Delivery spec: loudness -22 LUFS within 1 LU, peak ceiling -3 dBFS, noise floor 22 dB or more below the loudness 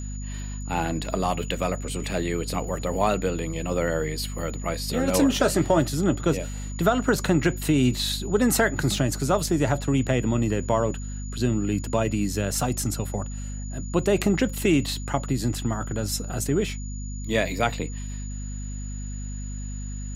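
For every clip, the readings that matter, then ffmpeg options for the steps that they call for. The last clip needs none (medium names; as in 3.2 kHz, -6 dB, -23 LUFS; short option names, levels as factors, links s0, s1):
hum 50 Hz; highest harmonic 250 Hz; hum level -30 dBFS; steady tone 6.9 kHz; tone level -42 dBFS; loudness -25.5 LUFS; peak level -7.0 dBFS; loudness target -22.0 LUFS
-> -af "bandreject=f=50:t=h:w=4,bandreject=f=100:t=h:w=4,bandreject=f=150:t=h:w=4,bandreject=f=200:t=h:w=4,bandreject=f=250:t=h:w=4"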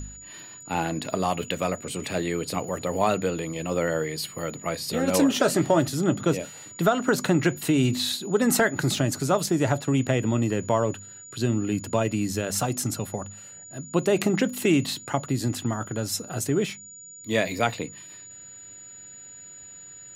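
hum not found; steady tone 6.9 kHz; tone level -42 dBFS
-> -af "bandreject=f=6900:w=30"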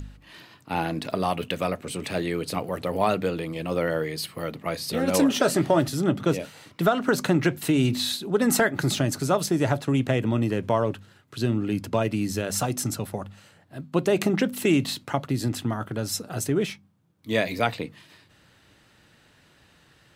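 steady tone not found; loudness -25.5 LUFS; peak level -7.5 dBFS; loudness target -22.0 LUFS
-> -af "volume=1.5"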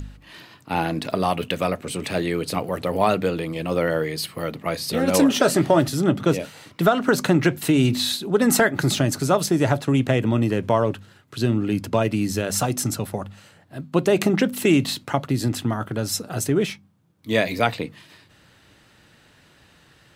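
loudness -22.0 LUFS; peak level -4.0 dBFS; noise floor -55 dBFS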